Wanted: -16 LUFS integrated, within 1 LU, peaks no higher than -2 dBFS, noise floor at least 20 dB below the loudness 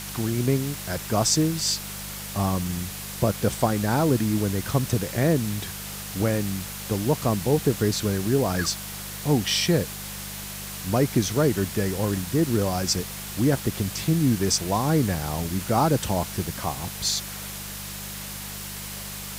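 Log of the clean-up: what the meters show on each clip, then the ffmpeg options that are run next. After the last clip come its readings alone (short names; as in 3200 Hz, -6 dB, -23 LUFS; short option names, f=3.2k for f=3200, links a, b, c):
hum 50 Hz; harmonics up to 200 Hz; hum level -41 dBFS; noise floor -36 dBFS; noise floor target -45 dBFS; loudness -25.0 LUFS; peak -6.5 dBFS; loudness target -16.0 LUFS
-> -af "bandreject=f=50:t=h:w=4,bandreject=f=100:t=h:w=4,bandreject=f=150:t=h:w=4,bandreject=f=200:t=h:w=4"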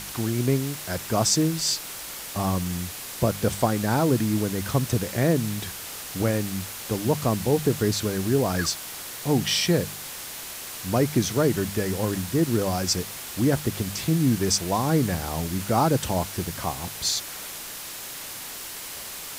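hum none; noise floor -37 dBFS; noise floor target -46 dBFS
-> -af "afftdn=nr=9:nf=-37"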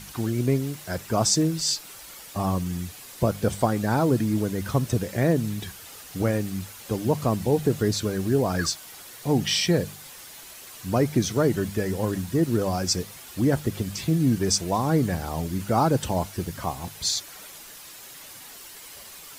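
noise floor -44 dBFS; noise floor target -45 dBFS
-> -af "afftdn=nr=6:nf=-44"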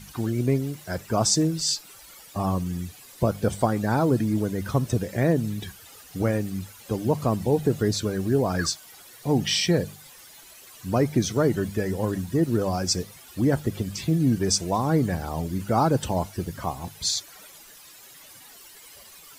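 noise floor -48 dBFS; loudness -25.0 LUFS; peak -7.0 dBFS; loudness target -16.0 LUFS
-> -af "volume=9dB,alimiter=limit=-2dB:level=0:latency=1"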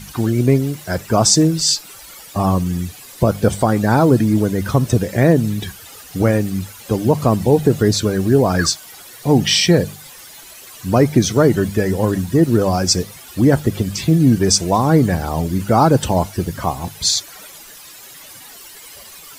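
loudness -16.5 LUFS; peak -2.0 dBFS; noise floor -39 dBFS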